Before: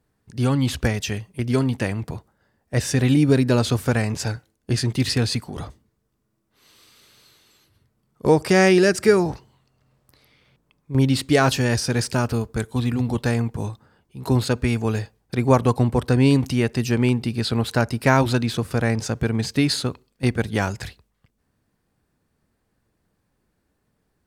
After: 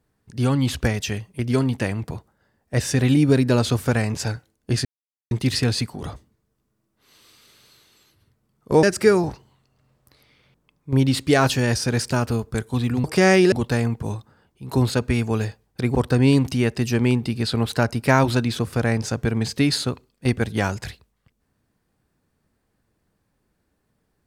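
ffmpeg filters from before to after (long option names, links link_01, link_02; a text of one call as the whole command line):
ffmpeg -i in.wav -filter_complex "[0:a]asplit=6[link_01][link_02][link_03][link_04][link_05][link_06];[link_01]atrim=end=4.85,asetpts=PTS-STARTPTS,afade=type=out:start_time=4.846:duration=0.004:curve=hsin,apad=pad_dur=0.46[link_07];[link_02]atrim=start=4.85:end=8.372,asetpts=PTS-STARTPTS,afade=type=in:duration=0.004:curve=hsin[link_08];[link_03]atrim=start=8.848:end=13.062[link_09];[link_04]atrim=start=8.368:end=8.852[link_10];[link_05]atrim=start=13.058:end=15.492[link_11];[link_06]atrim=start=15.928[link_12];[link_07][link_08]concat=n=2:v=0:a=1[link_13];[link_13][link_09]acrossfade=duration=0.004:curve1=hsin:curve2=hsin[link_14];[link_14][link_10]acrossfade=duration=0.004:curve1=hsin:curve2=hsin[link_15];[link_15][link_11]acrossfade=duration=0.004:curve1=hsin:curve2=hsin[link_16];[link_16][link_12]acrossfade=duration=0.004:curve1=hsin:curve2=hsin" out.wav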